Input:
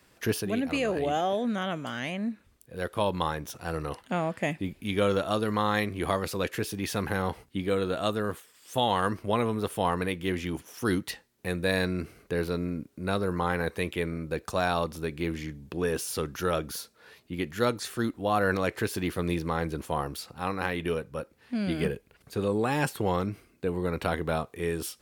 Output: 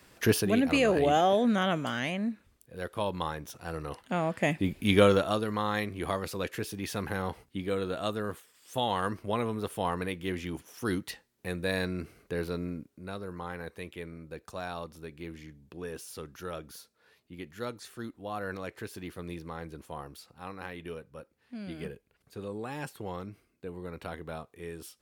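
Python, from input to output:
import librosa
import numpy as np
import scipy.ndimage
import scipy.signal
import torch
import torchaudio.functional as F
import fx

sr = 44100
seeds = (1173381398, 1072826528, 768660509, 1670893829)

y = fx.gain(x, sr, db=fx.line((1.76, 3.5), (2.81, -4.5), (3.83, -4.5), (4.93, 6.5), (5.48, -4.0), (12.71, -4.0), (13.11, -11.0)))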